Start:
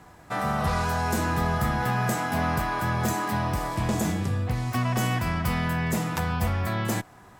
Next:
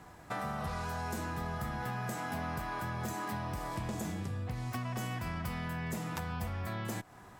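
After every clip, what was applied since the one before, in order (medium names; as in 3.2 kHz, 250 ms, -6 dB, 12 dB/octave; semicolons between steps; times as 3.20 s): compression 5:1, threshold -32 dBFS, peak gain reduction 10 dB; trim -3 dB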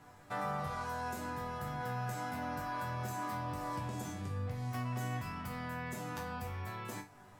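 chord resonator G2 major, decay 0.29 s; trim +8.5 dB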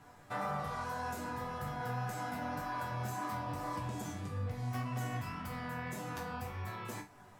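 flange 1.8 Hz, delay 0.7 ms, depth 8.6 ms, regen -42%; trim +4 dB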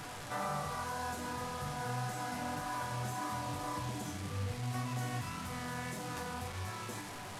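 one-bit delta coder 64 kbps, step -39 dBFS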